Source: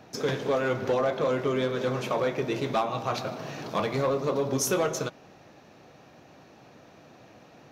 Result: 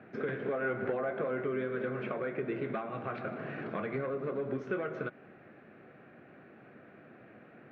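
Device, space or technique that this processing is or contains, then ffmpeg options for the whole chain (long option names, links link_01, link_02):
bass amplifier: -filter_complex "[0:a]acompressor=threshold=-30dB:ratio=6,highpass=64,equalizer=frequency=76:width_type=q:width=4:gain=-8,equalizer=frequency=220:width_type=q:width=4:gain=5,equalizer=frequency=380:width_type=q:width=4:gain=5,equalizer=frequency=910:width_type=q:width=4:gain=-9,equalizer=frequency=1500:width_type=q:width=4:gain=8,equalizer=frequency=2100:width_type=q:width=4:gain=4,lowpass=frequency=2400:width=0.5412,lowpass=frequency=2400:width=1.3066,asettb=1/sr,asplit=3[link_01][link_02][link_03];[link_01]atrim=end=0.524[link_04];[link_02]atrim=start=0.52:end=1.44,asetpts=PTS-STARTPTS,afade=type=in:duration=0.004:curve=qsin,afade=type=out:start_time=0.916:duration=0.004:curve=qsin,equalizer=frequency=770:width_type=o:width=0.77:gain=5.5[link_05];[link_03]atrim=start=1.436[link_06];[link_04][link_05]acrossfade=duration=0.004:curve1=hsin:curve2=qsin[link_07];[link_07][link_06]acrossfade=duration=0.004:curve1=qsin:curve2=hsin,volume=-3.5dB"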